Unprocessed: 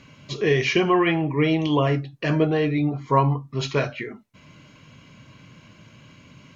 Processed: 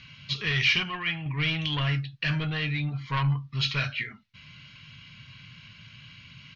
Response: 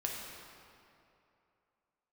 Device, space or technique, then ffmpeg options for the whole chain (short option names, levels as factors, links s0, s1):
saturation between pre-emphasis and de-emphasis: -filter_complex "[0:a]asettb=1/sr,asplit=3[s0][s1][s2];[s0]atrim=end=0.834[s3];[s1]atrim=start=0.83:end=1.26,asetpts=PTS-STARTPTS,afade=t=in:d=0.004:c=qsin,afade=t=out:st=0.426:d=0.004:c=qsin,agate=range=0.501:threshold=0.158:ratio=16:detection=peak[s4];[s2]atrim=start=1.256[s5];[s3][s4]acrossfade=d=0.004:c1=hsin:c2=qsin[s6];[s6][s5]acrossfade=d=0.004:c1=qsin:c2=hsin,highshelf=f=3200:g=11.5,asoftclip=type=tanh:threshold=0.168,firequalizer=gain_entry='entry(130,0);entry(340,-20);entry(1400,0);entry(2900,7);entry(4500,6);entry(8100,-16)':delay=0.05:min_phase=1,highshelf=f=3200:g=-11.5"